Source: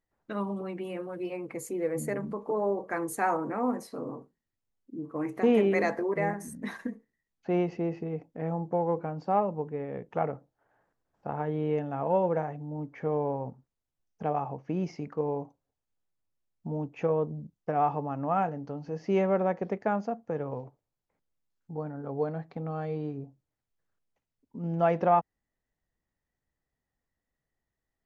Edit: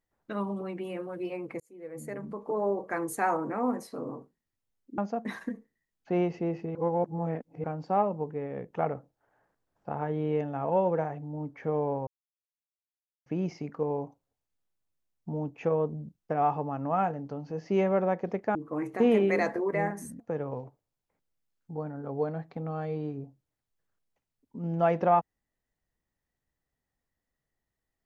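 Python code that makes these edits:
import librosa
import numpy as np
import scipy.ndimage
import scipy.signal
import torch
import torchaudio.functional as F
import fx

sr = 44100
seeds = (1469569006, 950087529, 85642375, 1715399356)

y = fx.edit(x, sr, fx.fade_in_span(start_s=1.6, length_s=1.06),
    fx.swap(start_s=4.98, length_s=1.65, other_s=19.93, other_length_s=0.27),
    fx.reverse_span(start_s=8.13, length_s=0.89),
    fx.silence(start_s=13.45, length_s=1.19), tone=tone)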